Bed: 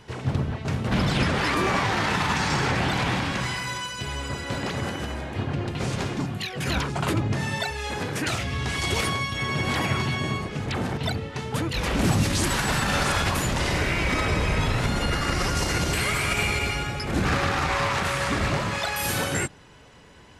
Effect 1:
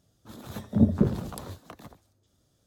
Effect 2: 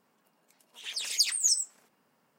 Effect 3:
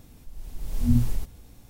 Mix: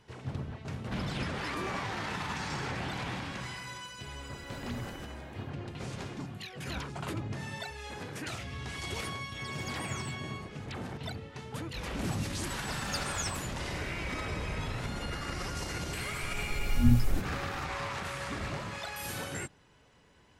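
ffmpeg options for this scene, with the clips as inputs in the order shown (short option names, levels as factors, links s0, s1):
-filter_complex "[3:a]asplit=2[s0][s1];[2:a]asplit=2[s2][s3];[0:a]volume=0.251[s4];[s0]highpass=f=98:p=1[s5];[s2]acompressor=threshold=0.0447:ratio=6:attack=3.2:release=140:knee=1:detection=peak[s6];[s5]atrim=end=1.69,asetpts=PTS-STARTPTS,volume=0.158,afade=t=in:d=0.004:c=hsin,afade=t=out:st=1.686:d=0.004:c=hsin,adelay=168021S[s7];[s6]atrim=end=2.38,asetpts=PTS-STARTPTS,volume=0.15,afade=t=in:d=0.004:c=hsin,afade=t=out:st=2.376:d=0.004:c=hsin,adelay=8480[s8];[s3]atrim=end=2.38,asetpts=PTS-STARTPTS,volume=0.224,afade=t=in:d=0.004:c=hsin,afade=t=out:st=2.376:d=0.004:c=hsin,adelay=11740[s9];[s1]atrim=end=1.69,asetpts=PTS-STARTPTS,volume=0.794,afade=t=in:d=0.004:c=hsin,afade=t=out:st=1.686:d=0.004:c=hsin,adelay=15960[s10];[s4][s7][s8][s9][s10]amix=inputs=5:normalize=0"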